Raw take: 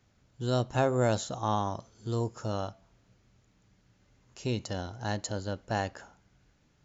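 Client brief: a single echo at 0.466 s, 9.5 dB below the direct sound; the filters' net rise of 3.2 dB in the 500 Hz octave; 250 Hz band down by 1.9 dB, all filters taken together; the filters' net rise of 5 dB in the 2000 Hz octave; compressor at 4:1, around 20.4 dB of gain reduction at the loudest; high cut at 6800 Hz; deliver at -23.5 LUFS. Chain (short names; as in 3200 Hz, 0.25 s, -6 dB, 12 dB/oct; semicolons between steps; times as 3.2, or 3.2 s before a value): LPF 6800 Hz; bell 250 Hz -4 dB; bell 500 Hz +4.5 dB; bell 2000 Hz +6.5 dB; compressor 4:1, threshold -45 dBFS; echo 0.466 s -9.5 dB; gain +23.5 dB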